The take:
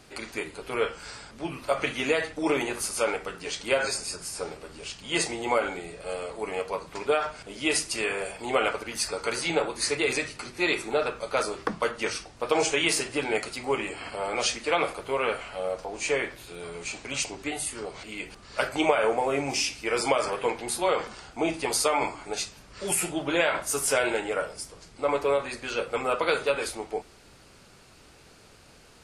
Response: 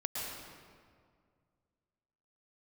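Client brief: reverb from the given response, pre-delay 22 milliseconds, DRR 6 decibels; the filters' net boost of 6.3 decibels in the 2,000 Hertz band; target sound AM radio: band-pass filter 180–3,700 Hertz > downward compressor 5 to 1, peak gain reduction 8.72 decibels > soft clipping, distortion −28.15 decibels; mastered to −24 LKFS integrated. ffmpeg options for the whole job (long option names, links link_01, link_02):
-filter_complex "[0:a]equalizer=frequency=2000:width_type=o:gain=8.5,asplit=2[link_01][link_02];[1:a]atrim=start_sample=2205,adelay=22[link_03];[link_02][link_03]afir=irnorm=-1:irlink=0,volume=-9.5dB[link_04];[link_01][link_04]amix=inputs=2:normalize=0,highpass=180,lowpass=3700,acompressor=threshold=-24dB:ratio=5,asoftclip=threshold=-13dB,volume=5dB"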